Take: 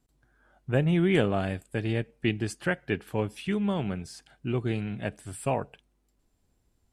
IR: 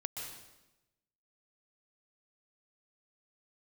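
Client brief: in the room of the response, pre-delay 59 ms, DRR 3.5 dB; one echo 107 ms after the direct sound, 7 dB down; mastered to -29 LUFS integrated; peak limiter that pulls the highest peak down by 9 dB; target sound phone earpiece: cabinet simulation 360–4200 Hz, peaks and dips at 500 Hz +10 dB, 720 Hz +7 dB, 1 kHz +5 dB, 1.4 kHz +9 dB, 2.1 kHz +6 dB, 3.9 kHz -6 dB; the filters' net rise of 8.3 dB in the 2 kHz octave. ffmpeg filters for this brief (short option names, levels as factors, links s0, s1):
-filter_complex "[0:a]equalizer=f=2000:t=o:g=3.5,alimiter=limit=0.112:level=0:latency=1,aecho=1:1:107:0.447,asplit=2[s0][s1];[1:a]atrim=start_sample=2205,adelay=59[s2];[s1][s2]afir=irnorm=-1:irlink=0,volume=0.668[s3];[s0][s3]amix=inputs=2:normalize=0,highpass=360,equalizer=f=500:t=q:w=4:g=10,equalizer=f=720:t=q:w=4:g=7,equalizer=f=1000:t=q:w=4:g=5,equalizer=f=1400:t=q:w=4:g=9,equalizer=f=2100:t=q:w=4:g=6,equalizer=f=3900:t=q:w=4:g=-6,lowpass=f=4200:w=0.5412,lowpass=f=4200:w=1.3066,volume=0.944"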